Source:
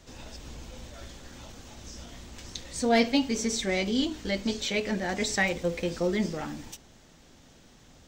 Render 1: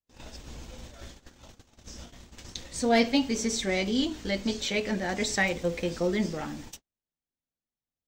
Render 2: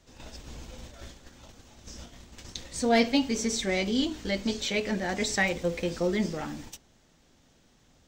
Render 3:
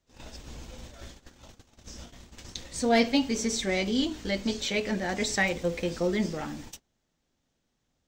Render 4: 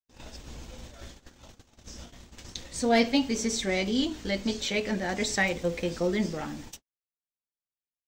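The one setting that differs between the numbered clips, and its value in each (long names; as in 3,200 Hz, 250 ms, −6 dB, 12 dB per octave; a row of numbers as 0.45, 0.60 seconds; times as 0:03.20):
noise gate, range: −43, −7, −22, −58 decibels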